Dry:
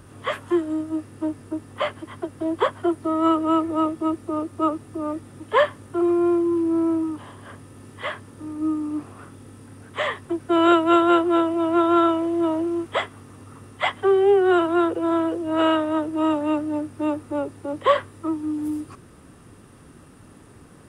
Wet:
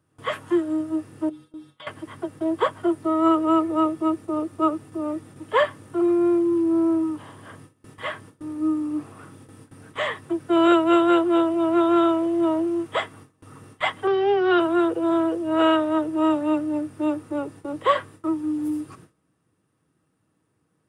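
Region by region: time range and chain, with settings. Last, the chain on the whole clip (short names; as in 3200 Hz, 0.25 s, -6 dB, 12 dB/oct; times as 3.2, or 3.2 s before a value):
1.29–1.87 bell 3600 Hz +15 dB 0.49 oct + compressor 12:1, threshold -27 dBFS + metallic resonator 72 Hz, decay 0.38 s, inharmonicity 0.008
14.07–14.6 steep low-pass 5700 Hz 96 dB/oct + high shelf 2500 Hz +8.5 dB
whole clip: HPF 71 Hz 24 dB/oct; gate with hold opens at -34 dBFS; comb 6.3 ms, depth 34%; gain -1.5 dB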